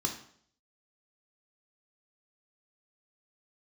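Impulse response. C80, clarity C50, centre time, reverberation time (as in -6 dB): 12.5 dB, 8.5 dB, 20 ms, 0.60 s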